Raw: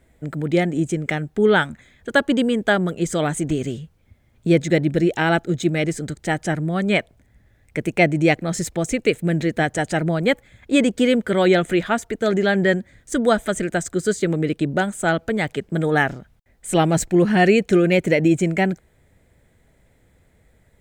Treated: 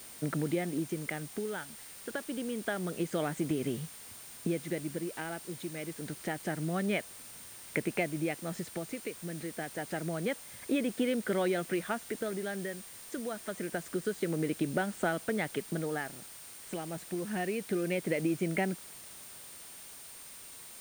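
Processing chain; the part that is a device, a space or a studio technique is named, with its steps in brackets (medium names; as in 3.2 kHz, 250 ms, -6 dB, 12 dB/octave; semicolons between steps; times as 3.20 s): medium wave at night (band-pass 160–3600 Hz; compression, threshold -28 dBFS, peak gain reduction 16.5 dB; tremolo 0.27 Hz, depth 64%; whistle 9 kHz -51 dBFS; white noise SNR 15 dB)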